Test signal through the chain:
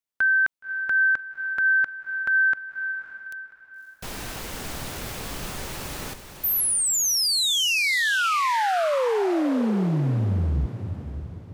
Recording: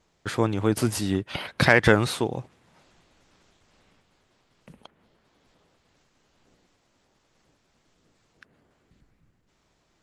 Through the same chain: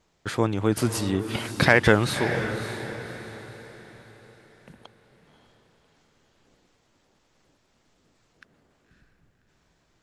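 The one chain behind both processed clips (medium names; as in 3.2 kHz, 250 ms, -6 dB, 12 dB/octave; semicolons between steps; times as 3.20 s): echo that smears into a reverb 569 ms, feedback 41%, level -9.5 dB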